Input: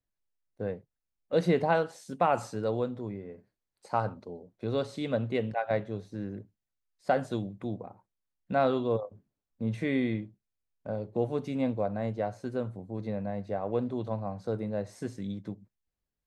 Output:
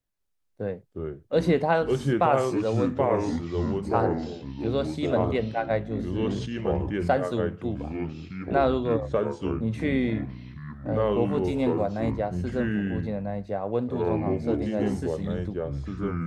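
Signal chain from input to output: 11.47–12.11 high shelf 5600 Hz +11 dB; echoes that change speed 0.202 s, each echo -4 st, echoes 3; 5.83–7.11 sustainer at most 40 dB/s; gain +3 dB

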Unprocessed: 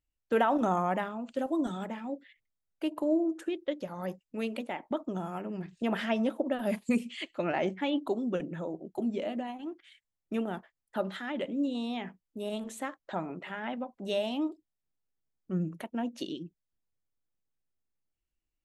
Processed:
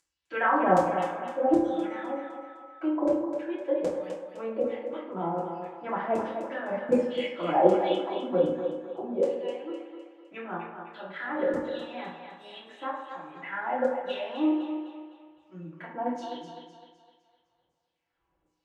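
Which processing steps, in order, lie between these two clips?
RIAA curve playback; upward compressor, threshold -38 dBFS; LFO band-pass saw down 1.3 Hz 490–7500 Hz; 1.81–2.88 whine 1300 Hz -54 dBFS; thinning echo 0.255 s, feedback 45%, high-pass 300 Hz, level -7 dB; reverb RT60 0.80 s, pre-delay 3 ms, DRR -8.5 dB; gain +1.5 dB

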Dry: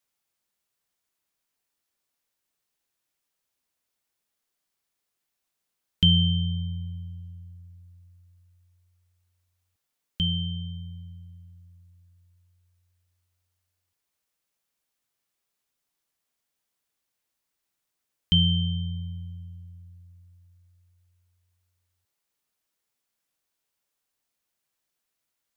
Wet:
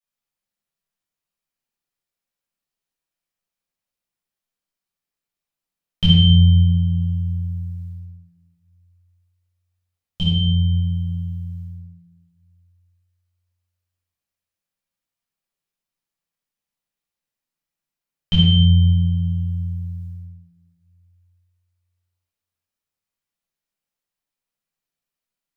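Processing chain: gate -51 dBFS, range -16 dB; in parallel at +0.5 dB: compressor, threshold -35 dBFS, peak gain reduction 18.5 dB; on the sum: shoebox room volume 590 m³, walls mixed, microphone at 6.1 m; gain -7.5 dB

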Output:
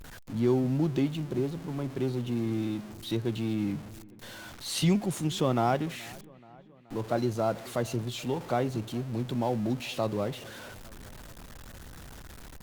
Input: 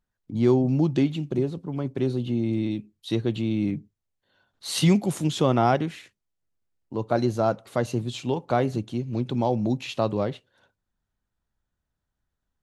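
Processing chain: zero-crossing step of -33 dBFS; dark delay 0.427 s, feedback 62%, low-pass 2400 Hz, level -23 dB; gain -6 dB; Opus 64 kbps 48000 Hz

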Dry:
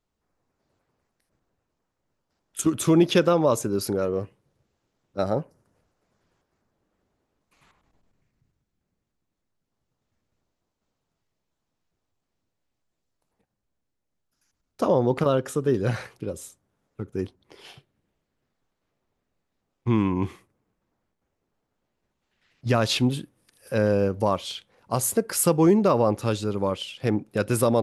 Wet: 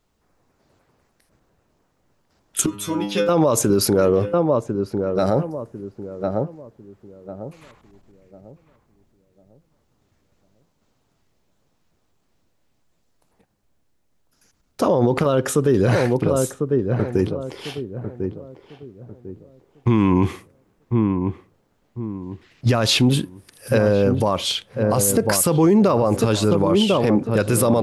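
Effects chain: 2.66–3.29 metallic resonator 100 Hz, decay 0.52 s, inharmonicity 0.002; darkening echo 1.048 s, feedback 33%, low-pass 880 Hz, level -8 dB; maximiser +18.5 dB; gain -7 dB

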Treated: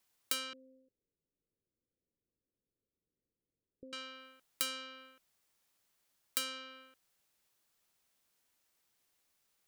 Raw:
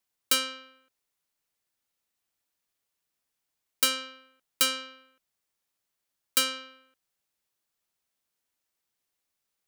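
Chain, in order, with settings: compressor 3:1, threshold -44 dBFS, peak gain reduction 18 dB; 0.53–3.93 steep low-pass 520 Hz 48 dB/oct; gain +5 dB

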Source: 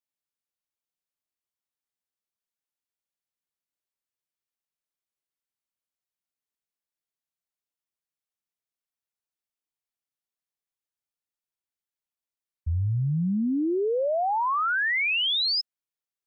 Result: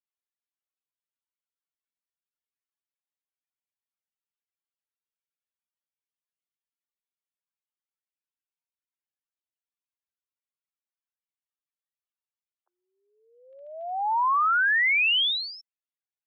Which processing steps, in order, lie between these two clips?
loudest bins only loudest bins 64; 13.4–14.89 crackle 15/s -51 dBFS; mistuned SSB +270 Hz 600–3300 Hz; gain +3 dB

